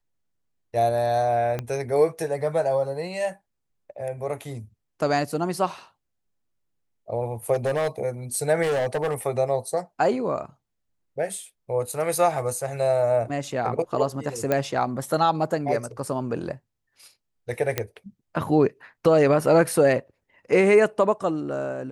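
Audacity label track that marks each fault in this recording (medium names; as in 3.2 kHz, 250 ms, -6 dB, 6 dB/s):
1.590000	1.590000	pop -15 dBFS
7.530000	7.880000	clipped -20 dBFS
8.620000	9.140000	clipped -21 dBFS
14.520000	14.520000	pop -10 dBFS
17.780000	17.780000	pop -8 dBFS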